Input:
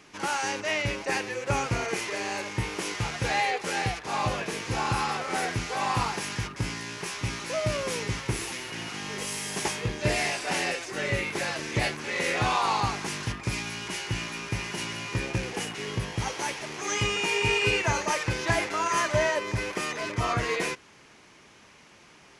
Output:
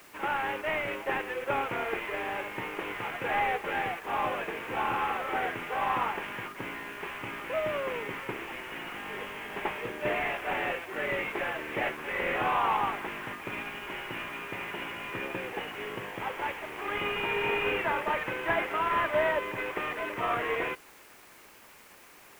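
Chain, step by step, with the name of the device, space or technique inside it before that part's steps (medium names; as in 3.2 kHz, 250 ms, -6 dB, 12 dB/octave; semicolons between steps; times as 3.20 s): army field radio (band-pass 330–2900 Hz; CVSD coder 16 kbps; white noise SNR 25 dB)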